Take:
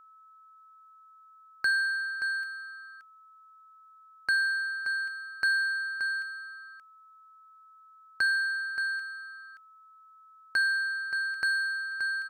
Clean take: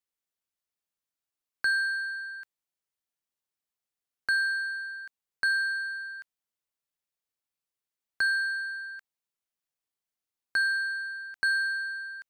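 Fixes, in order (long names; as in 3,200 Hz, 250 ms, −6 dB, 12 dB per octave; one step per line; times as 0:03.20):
notch filter 1,300 Hz, Q 30
echo removal 576 ms −8.5 dB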